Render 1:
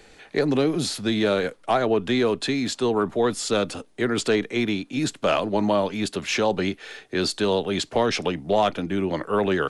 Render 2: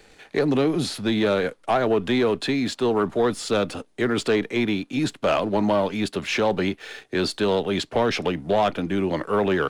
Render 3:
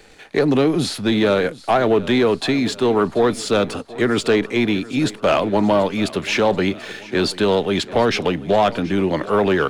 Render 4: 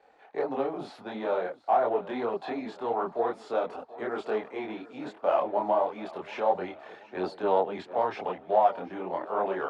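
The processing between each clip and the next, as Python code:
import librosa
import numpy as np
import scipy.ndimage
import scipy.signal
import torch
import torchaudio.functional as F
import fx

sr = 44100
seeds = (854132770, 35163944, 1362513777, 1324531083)

y1 = fx.dynamic_eq(x, sr, hz=7200.0, q=0.85, threshold_db=-44.0, ratio=4.0, max_db=-7)
y1 = fx.leveller(y1, sr, passes=1)
y1 = F.gain(torch.from_numpy(y1), -2.0).numpy()
y2 = fx.echo_feedback(y1, sr, ms=733, feedback_pct=56, wet_db=-19.0)
y2 = F.gain(torch.from_numpy(y2), 4.5).numpy()
y3 = fx.bandpass_q(y2, sr, hz=780.0, q=2.5)
y3 = fx.chorus_voices(y3, sr, voices=4, hz=1.5, base_ms=25, depth_ms=3.0, mix_pct=50)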